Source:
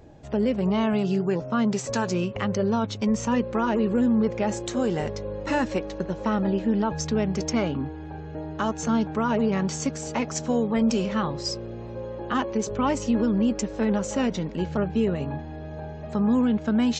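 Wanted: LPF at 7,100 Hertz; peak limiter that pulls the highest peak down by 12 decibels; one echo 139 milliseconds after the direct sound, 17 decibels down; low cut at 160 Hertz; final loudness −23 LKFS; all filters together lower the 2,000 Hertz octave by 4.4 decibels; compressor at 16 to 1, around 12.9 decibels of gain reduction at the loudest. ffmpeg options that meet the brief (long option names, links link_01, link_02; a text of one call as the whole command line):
ffmpeg -i in.wav -af "highpass=160,lowpass=7100,equalizer=frequency=2000:width_type=o:gain=-6,acompressor=threshold=-32dB:ratio=16,alimiter=level_in=7dB:limit=-24dB:level=0:latency=1,volume=-7dB,aecho=1:1:139:0.141,volume=16.5dB" out.wav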